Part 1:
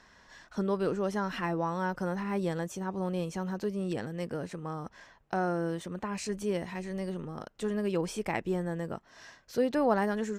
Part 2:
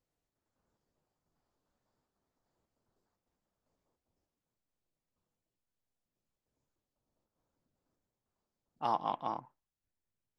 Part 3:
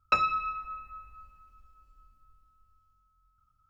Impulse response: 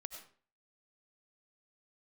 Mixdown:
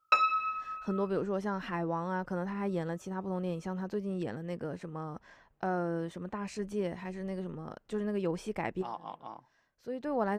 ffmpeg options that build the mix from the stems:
-filter_complex "[0:a]highshelf=f=3.5k:g=-9,adelay=300,volume=-2dB[a];[1:a]volume=-8.5dB,asplit=2[b][c];[2:a]highpass=500,volume=0dB,asplit=3[d][e][f];[d]atrim=end=1.1,asetpts=PTS-STARTPTS,afade=t=out:st=1.096:d=0.004:c=hsin[g];[e]atrim=start=1.1:end=2.32,asetpts=PTS-STARTPTS,volume=0[h];[f]atrim=start=2.32,asetpts=PTS-STARTPTS,afade=t=in:d=0.004:c=hsin[i];[g][h][i]concat=n=3:v=0:a=1[j];[c]apad=whole_len=471336[k];[a][k]sidechaincompress=threshold=-58dB:ratio=10:attack=7.5:release=719[l];[l][b][j]amix=inputs=3:normalize=0"

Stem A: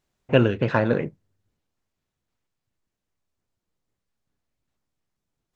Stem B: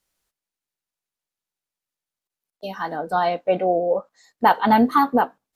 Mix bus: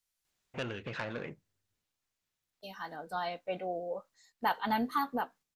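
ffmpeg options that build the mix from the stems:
-filter_complex "[0:a]acompressor=threshold=-27dB:ratio=2,asoftclip=type=tanh:threshold=-21.5dB,adelay=250,volume=0.5dB[a];[1:a]lowshelf=f=190:g=9.5,volume=-14dB,asplit=2[b][c];[c]apad=whole_len=255925[d];[a][d]sidechaingate=range=-6dB:threshold=-55dB:ratio=16:detection=peak[e];[e][b]amix=inputs=2:normalize=0,tiltshelf=f=1.1k:g=-6.5"

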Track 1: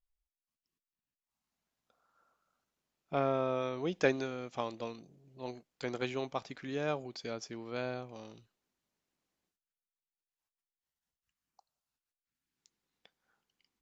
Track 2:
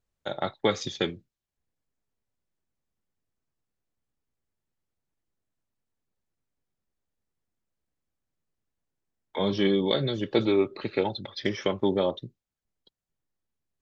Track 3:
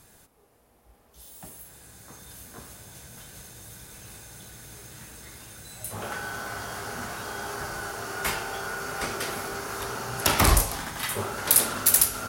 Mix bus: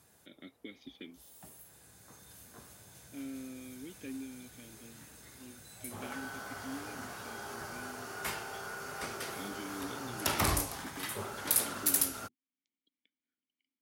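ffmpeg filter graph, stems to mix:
-filter_complex "[0:a]asoftclip=type=tanh:threshold=-24.5dB,volume=0.5dB[a];[1:a]volume=-4dB[b];[2:a]volume=-9dB[c];[a][b]amix=inputs=2:normalize=0,asplit=3[d][e][f];[d]bandpass=f=270:t=q:w=8,volume=0dB[g];[e]bandpass=f=2.29k:t=q:w=8,volume=-6dB[h];[f]bandpass=f=3.01k:t=q:w=8,volume=-9dB[i];[g][h][i]amix=inputs=3:normalize=0,alimiter=level_in=11dB:limit=-24dB:level=0:latency=1:release=293,volume=-11dB,volume=0dB[j];[c][j]amix=inputs=2:normalize=0,highpass=71"

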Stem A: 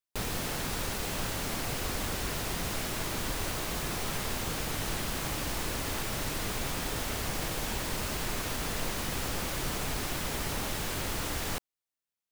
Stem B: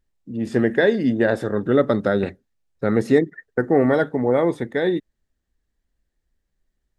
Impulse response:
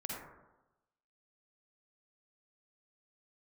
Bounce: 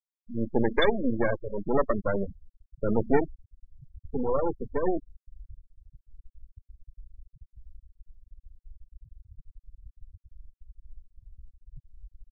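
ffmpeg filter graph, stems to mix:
-filter_complex "[0:a]adelay=2100,volume=-5dB,asplit=2[a][b];[b]volume=-22.5dB[c];[1:a]adynamicequalizer=threshold=0.0501:dfrequency=320:dqfactor=0.73:tfrequency=320:tqfactor=0.73:attack=5:release=100:ratio=0.375:range=2:mode=cutabove:tftype=bell,aeval=exprs='max(val(0),0)':c=same,volume=0.5dB,asplit=3[d][e][f];[d]atrim=end=3.35,asetpts=PTS-STARTPTS,afade=t=out:st=3.346:d=0.004:c=hsin[g];[e]atrim=start=3.35:end=4.05,asetpts=PTS-STARTPTS,volume=0[h];[f]atrim=start=4.05,asetpts=PTS-STARTPTS,afade=t=in:d=0.004:c=hsin[i];[g][h][i]concat=n=3:v=0:a=1[j];[2:a]atrim=start_sample=2205[k];[c][k]afir=irnorm=-1:irlink=0[l];[a][j][l]amix=inputs=3:normalize=0,afftfilt=real='re*gte(hypot(re,im),0.1)':imag='im*gte(hypot(re,im),0.1)':win_size=1024:overlap=0.75,aexciter=amount=13.9:drive=7.9:freq=3.5k"

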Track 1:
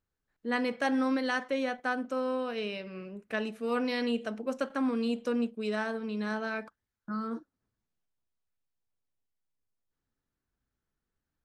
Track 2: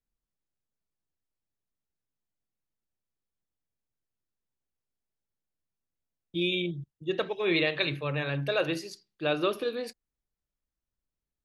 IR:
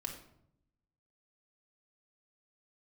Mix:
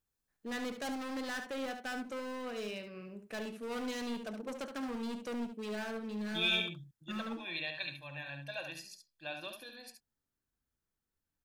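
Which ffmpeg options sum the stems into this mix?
-filter_complex "[0:a]highshelf=f=2.7k:g=-7,asoftclip=type=hard:threshold=-32dB,volume=-5dB,asplit=2[a][b];[b]volume=-8.5dB[c];[1:a]lowshelf=f=160:g=-10.5,aecho=1:1:1.2:0.95,volume=-8dB,afade=t=out:st=6.49:d=0.78:silence=0.354813,asplit=2[d][e];[e]volume=-7dB[f];[c][f]amix=inputs=2:normalize=0,aecho=0:1:71:1[g];[a][d][g]amix=inputs=3:normalize=0,highshelf=f=3.8k:g=11.5"

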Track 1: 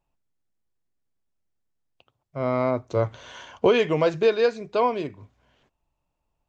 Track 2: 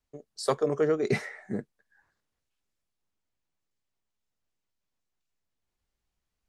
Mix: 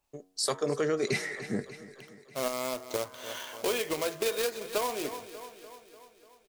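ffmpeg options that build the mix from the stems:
-filter_complex "[0:a]highpass=280,acrusher=bits=2:mode=log:mix=0:aa=0.000001,volume=-1.5dB,asplit=2[a][b];[b]volume=-19dB[c];[1:a]adynamicequalizer=threshold=0.00708:dfrequency=1700:dqfactor=0.7:tfrequency=1700:tqfactor=0.7:attack=5:release=100:ratio=0.375:range=3:mode=boostabove:tftype=highshelf,volume=0.5dB,asplit=2[d][e];[e]volume=-18.5dB[f];[c][f]amix=inputs=2:normalize=0,aecho=0:1:295|590|885|1180|1475|1770|2065|2360|2655:1|0.58|0.336|0.195|0.113|0.0656|0.0381|0.0221|0.0128[g];[a][d][g]amix=inputs=3:normalize=0,highshelf=f=2.8k:g=7.5,bandreject=f=92.9:t=h:w=4,bandreject=f=185.8:t=h:w=4,bandreject=f=278.7:t=h:w=4,bandreject=f=371.6:t=h:w=4,bandreject=f=464.5:t=h:w=4,bandreject=f=557.4:t=h:w=4,bandreject=f=650.3:t=h:w=4,bandreject=f=743.2:t=h:w=4,bandreject=f=836.1:t=h:w=4,bandreject=f=929:t=h:w=4,bandreject=f=1.0219k:t=h:w=4,bandreject=f=1.1148k:t=h:w=4,bandreject=f=1.2077k:t=h:w=4,bandreject=f=1.3006k:t=h:w=4,bandreject=f=1.3935k:t=h:w=4,bandreject=f=1.4864k:t=h:w=4,bandreject=f=1.5793k:t=h:w=4,bandreject=f=1.6722k:t=h:w=4,bandreject=f=1.7651k:t=h:w=4,bandreject=f=1.858k:t=h:w=4,bandreject=f=1.9509k:t=h:w=4,alimiter=limit=-18dB:level=0:latency=1:release=267"

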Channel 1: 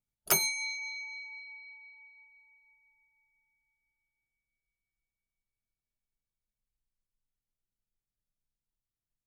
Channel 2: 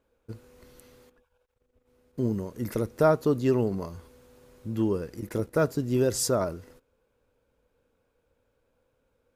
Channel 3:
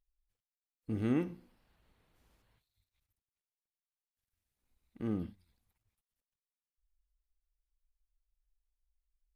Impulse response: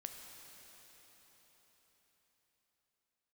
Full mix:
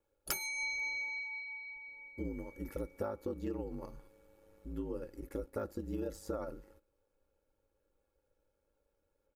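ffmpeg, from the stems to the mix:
-filter_complex "[0:a]volume=-1.5dB[a];[1:a]aeval=exprs='val(0)*sin(2*PI*52*n/s)':c=same,equalizer=f=5.3k:w=0.46:g=-7,deesser=0.9,volume=-7dB[b];[a][b]amix=inputs=2:normalize=0,aecho=1:1:3.6:0.5,acompressor=threshold=-34dB:ratio=16,volume=0dB,aecho=1:1:2.3:0.37"

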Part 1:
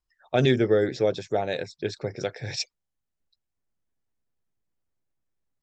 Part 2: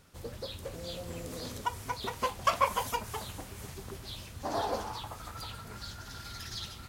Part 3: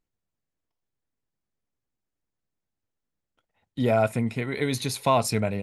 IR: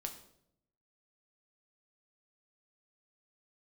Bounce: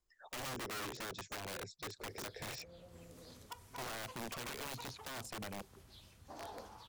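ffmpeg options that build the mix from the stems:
-filter_complex "[0:a]equalizer=f=420:t=o:w=1.2:g=8,asoftclip=type=tanh:threshold=-11.5dB,volume=-1dB[a];[1:a]adelay=1850,volume=-18.5dB,asplit=2[b][c];[c]volume=-6dB[d];[2:a]afwtdn=0.0126,volume=-8.5dB[e];[a][e]amix=inputs=2:normalize=0,equalizer=f=7.1k:w=3.2:g=6,acompressor=threshold=-33dB:ratio=2,volume=0dB[f];[3:a]atrim=start_sample=2205[g];[d][g]afir=irnorm=-1:irlink=0[h];[b][f][h]amix=inputs=3:normalize=0,acrossover=split=250|2200[i][j][k];[i]acompressor=threshold=-47dB:ratio=4[l];[j]acompressor=threshold=-43dB:ratio=4[m];[k]acompressor=threshold=-52dB:ratio=4[n];[l][m][n]amix=inputs=3:normalize=0,aeval=exprs='(mod(79.4*val(0)+1,2)-1)/79.4':c=same"

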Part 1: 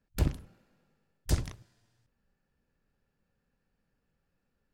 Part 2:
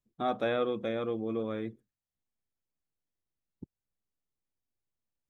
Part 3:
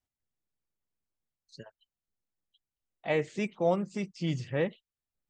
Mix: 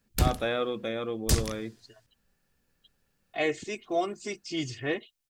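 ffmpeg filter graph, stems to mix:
-filter_complex "[0:a]volume=2.5dB[a];[1:a]volume=-0.5dB,asplit=2[b][c];[2:a]bandreject=f=890:w=5.8,aecho=1:1:2.8:0.93,adelay=300,volume=-2dB[d];[c]apad=whole_len=246998[e];[d][e]sidechaincompress=threshold=-45dB:ratio=8:attack=40:release=755[f];[a][b][f]amix=inputs=3:normalize=0,highshelf=f=2.2k:g=9"

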